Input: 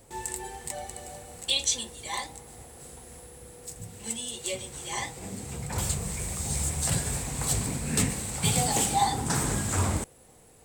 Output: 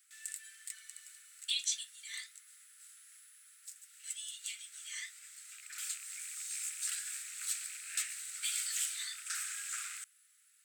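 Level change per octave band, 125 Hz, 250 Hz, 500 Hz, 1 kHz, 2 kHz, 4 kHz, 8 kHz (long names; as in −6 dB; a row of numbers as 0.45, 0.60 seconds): below −40 dB, below −40 dB, below −40 dB, −26.5 dB, −7.5 dB, −8.0 dB, −8.0 dB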